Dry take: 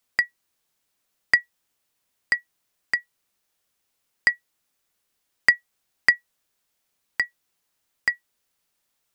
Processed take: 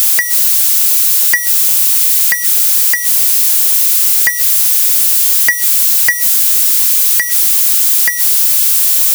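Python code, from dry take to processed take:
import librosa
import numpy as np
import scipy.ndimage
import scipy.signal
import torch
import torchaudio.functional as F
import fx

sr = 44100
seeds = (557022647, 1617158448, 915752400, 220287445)

y = x + 0.5 * 10.0 ** (-13.0 / 20.0) * np.diff(np.sign(x), prepend=np.sign(x[:1]))
y = fx.leveller(y, sr, passes=2)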